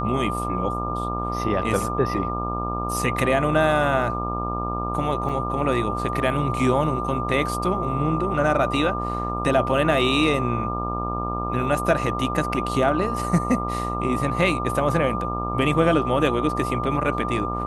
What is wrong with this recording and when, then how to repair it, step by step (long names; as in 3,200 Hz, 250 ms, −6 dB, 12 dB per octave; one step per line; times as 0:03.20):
mains buzz 60 Hz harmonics 22 −29 dBFS
whistle 1,200 Hz −28 dBFS
0:05.29: drop-out 3.4 ms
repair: hum removal 60 Hz, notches 22
notch filter 1,200 Hz, Q 30
repair the gap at 0:05.29, 3.4 ms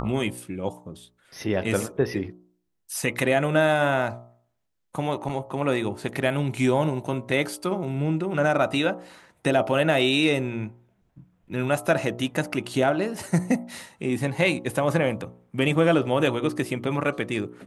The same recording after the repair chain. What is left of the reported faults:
none of them is left